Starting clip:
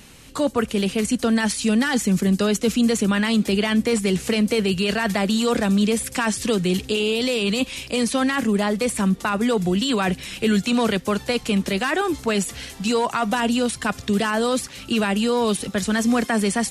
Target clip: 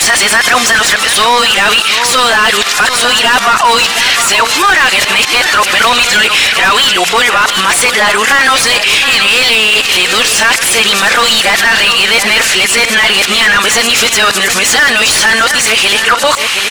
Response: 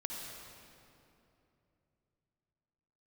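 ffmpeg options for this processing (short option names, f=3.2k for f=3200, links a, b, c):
-filter_complex "[0:a]areverse,highpass=1.3k,asplit=2[a][b];[b]highpass=f=720:p=1,volume=29dB,asoftclip=type=tanh:threshold=-7.5dB[c];[a][c]amix=inputs=2:normalize=0,lowpass=f=2.4k:p=1,volume=-6dB,asplit=2[d][e];[e]aecho=0:1:132|719:0.106|0.251[f];[d][f]amix=inputs=2:normalize=0,alimiter=level_in=18dB:limit=-1dB:release=50:level=0:latency=1,volume=-1dB"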